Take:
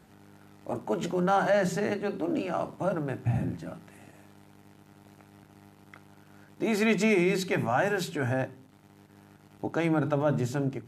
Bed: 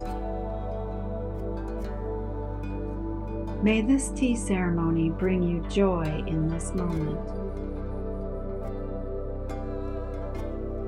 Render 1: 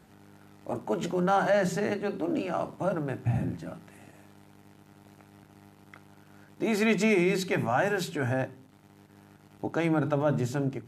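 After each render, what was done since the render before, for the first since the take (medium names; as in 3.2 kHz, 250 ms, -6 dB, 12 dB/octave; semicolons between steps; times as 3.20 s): no audible change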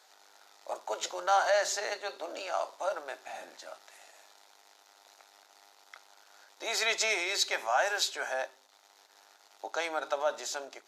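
high-pass 590 Hz 24 dB/octave; high-order bell 5 kHz +9.5 dB 1.2 oct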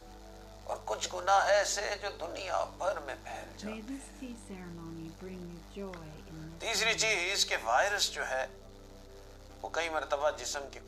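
add bed -19.5 dB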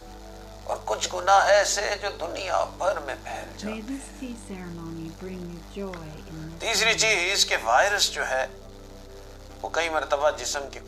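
trim +8 dB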